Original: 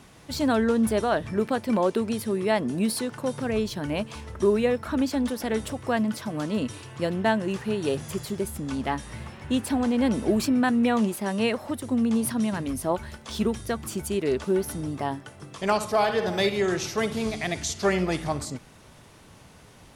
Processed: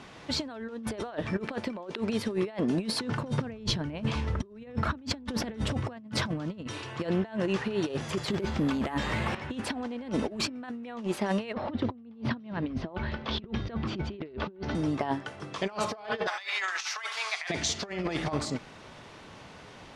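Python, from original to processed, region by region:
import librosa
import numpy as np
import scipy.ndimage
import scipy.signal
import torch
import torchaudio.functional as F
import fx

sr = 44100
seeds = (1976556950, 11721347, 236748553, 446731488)

y = fx.chain(x, sr, fx.bass_treble(bass_db=12, treble_db=-1),
    fx.sustainer(db_per_s=120.0), at=(3.0, 6.67))
y = fx.chain(y, sr, fx.resample_bad(factor=4, down='filtered', up='hold'),
    fx.env_flatten(amount_pct=50), at=(8.28, 9.35))
y = fx.chain(y, sr, fx.lowpass(hz=4300.0, slope=24),
    fx.low_shelf(hz=390.0, db=8.5), at=(11.53, 14.75))
y = fx.chain(y, sr, fx.highpass(hz=1000.0, slope=24),
    fx.peak_eq(hz=3400.0, db=-3.5, octaves=0.83),
    fx.over_compress(threshold_db=-37.0, ratio=-0.5), at=(16.27, 17.5))
y = scipy.signal.sosfilt(scipy.signal.butter(2, 4600.0, 'lowpass', fs=sr, output='sos'), y)
y = fx.low_shelf(y, sr, hz=170.0, db=-10.0)
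y = fx.over_compress(y, sr, threshold_db=-31.0, ratio=-0.5)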